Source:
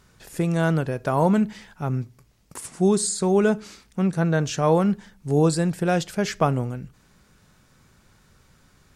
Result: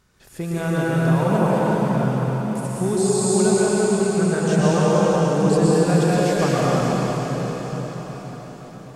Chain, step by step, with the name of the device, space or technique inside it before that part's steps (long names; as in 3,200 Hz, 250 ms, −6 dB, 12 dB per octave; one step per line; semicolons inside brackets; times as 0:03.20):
cathedral (convolution reverb RT60 5.7 s, pre-delay 107 ms, DRR −8.5 dB)
level −5 dB